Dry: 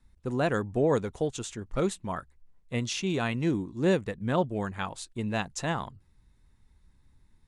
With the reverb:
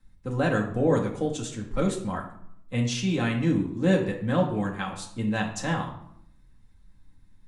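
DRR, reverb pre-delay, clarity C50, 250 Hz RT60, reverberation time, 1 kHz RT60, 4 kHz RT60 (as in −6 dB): −1.5 dB, 4 ms, 8.0 dB, 1.0 s, 0.70 s, 0.70 s, 0.45 s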